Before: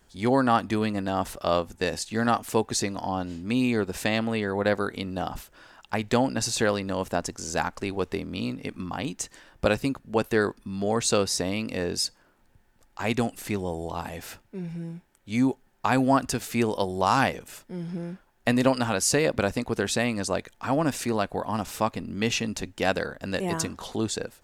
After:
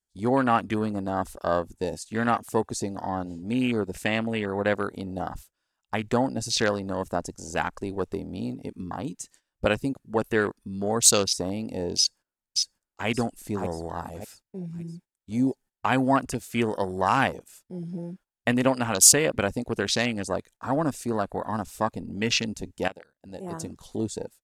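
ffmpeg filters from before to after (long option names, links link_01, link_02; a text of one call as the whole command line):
ffmpeg -i in.wav -filter_complex "[0:a]asplit=2[link_01][link_02];[link_02]afade=type=in:start_time=11.97:duration=0.01,afade=type=out:start_time=13.08:duration=0.01,aecho=0:1:580|1160|1740|2320|2900|3480|4060:0.749894|0.374947|0.187474|0.0937368|0.0468684|0.0234342|0.0117171[link_03];[link_01][link_03]amix=inputs=2:normalize=0,asplit=2[link_04][link_05];[link_04]atrim=end=22.88,asetpts=PTS-STARTPTS,afade=type=out:start_time=22.876:duration=0.004:curve=hsin:silence=0.16788[link_06];[link_05]atrim=start=22.88,asetpts=PTS-STARTPTS,afade=type=in:duration=0.94:curve=qua:silence=0.16788[link_07];[link_06][link_07]concat=n=2:v=0:a=1,agate=range=-15dB:threshold=-46dB:ratio=16:detection=peak,afwtdn=0.0251,equalizer=frequency=9300:width=0.41:gain=13.5,volume=-1dB" out.wav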